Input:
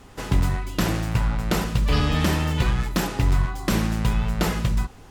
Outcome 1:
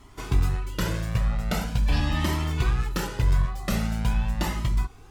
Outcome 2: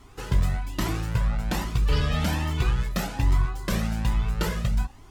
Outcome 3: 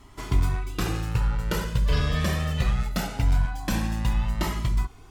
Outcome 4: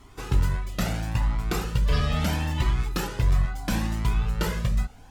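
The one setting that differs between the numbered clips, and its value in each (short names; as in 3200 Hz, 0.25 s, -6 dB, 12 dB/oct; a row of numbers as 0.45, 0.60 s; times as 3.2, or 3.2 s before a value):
cascading flanger, rate: 0.43, 1.2, 0.22, 0.75 Hz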